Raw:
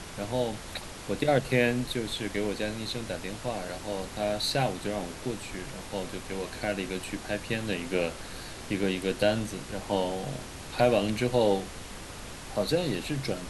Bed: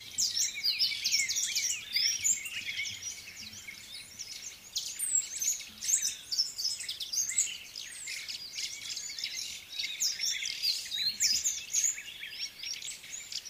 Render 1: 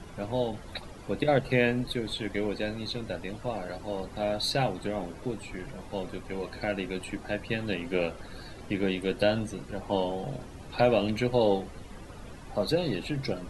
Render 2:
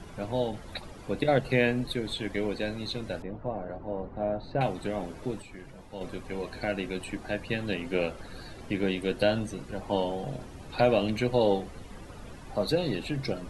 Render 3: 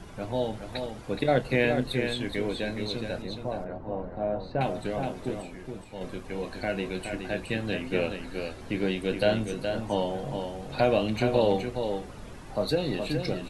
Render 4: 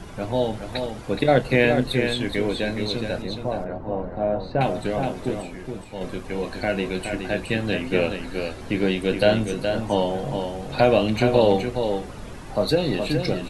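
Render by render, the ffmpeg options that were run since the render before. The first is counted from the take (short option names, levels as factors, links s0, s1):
-af "afftdn=nr=13:nf=-42"
-filter_complex "[0:a]asettb=1/sr,asplit=3[s0][s1][s2];[s0]atrim=end=3.224[s3];[s1]atrim=start=3.22:end=4.61,asetpts=PTS-STARTPTS,afade=t=in:d=0.004:c=qsin,afade=t=out:st=1.386:d=0.004:c=qsin,lowpass=1100[s4];[s2]atrim=start=4.606[s5];[s3][s4]acrossfade=d=0.004:c1=hsin:c2=qsin[s6];[s6][s5]acrossfade=d=0.004:c1=qsin:c2=hsin,asplit=3[s7][s8][s9];[s7]atrim=end=5.422[s10];[s8]atrim=start=5.418:end=6.012,asetpts=PTS-STARTPTS,volume=0.473[s11];[s9]atrim=start=6.008[s12];[s10][s11]acrossfade=d=0.004:c1=hsin:c2=hsin[s13];[s13][s12]acrossfade=d=0.004:c1=hsin:c2=hsin"
-filter_complex "[0:a]asplit=2[s0][s1];[s1]adelay=27,volume=0.211[s2];[s0][s2]amix=inputs=2:normalize=0,aecho=1:1:420:0.473"
-af "volume=2"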